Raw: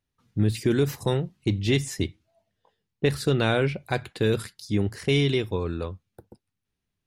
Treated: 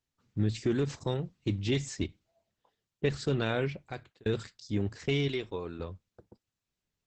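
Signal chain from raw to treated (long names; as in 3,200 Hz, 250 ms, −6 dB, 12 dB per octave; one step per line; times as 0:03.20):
0:03.59–0:04.26: fade out
0:05.28–0:05.80: low-shelf EQ 170 Hz −11 dB
level −6 dB
Opus 10 kbit/s 48,000 Hz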